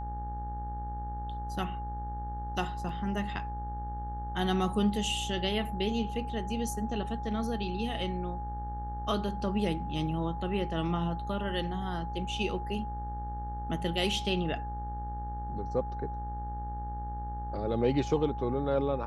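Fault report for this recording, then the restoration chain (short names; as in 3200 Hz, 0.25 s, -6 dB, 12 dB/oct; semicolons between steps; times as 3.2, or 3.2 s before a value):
buzz 60 Hz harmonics 31 -38 dBFS
tone 830 Hz -38 dBFS
2.89 gap 2.9 ms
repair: notch 830 Hz, Q 30; de-hum 60 Hz, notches 31; interpolate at 2.89, 2.9 ms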